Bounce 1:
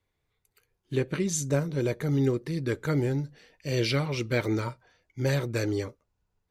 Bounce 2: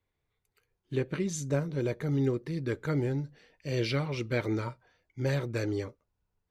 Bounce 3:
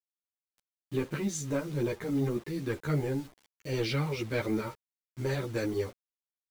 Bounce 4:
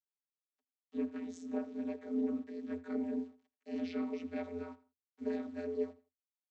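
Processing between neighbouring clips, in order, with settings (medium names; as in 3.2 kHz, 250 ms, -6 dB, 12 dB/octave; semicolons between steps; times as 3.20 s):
treble shelf 6.1 kHz -9 dB; trim -3 dB
waveshaping leveller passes 1; word length cut 8-bit, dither none; three-phase chorus
feedback delay 83 ms, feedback 26%, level -19 dB; AM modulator 110 Hz, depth 100%; vocoder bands 32, square 85.9 Hz; trim -1 dB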